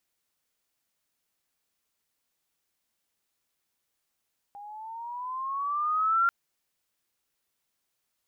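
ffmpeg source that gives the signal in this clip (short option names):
-f lavfi -i "aevalsrc='pow(10,(-19.5+21.5*(t/1.74-1))/20)*sin(2*PI*804*1.74/(9.5*log(2)/12)*(exp(9.5*log(2)/12*t/1.74)-1))':d=1.74:s=44100"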